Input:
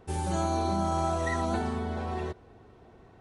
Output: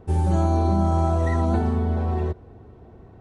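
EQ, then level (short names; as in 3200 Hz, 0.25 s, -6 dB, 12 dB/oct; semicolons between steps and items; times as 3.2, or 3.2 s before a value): tilt shelf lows +5 dB, about 1400 Hz; bell 80 Hz +4 dB; low shelf 390 Hz +4 dB; 0.0 dB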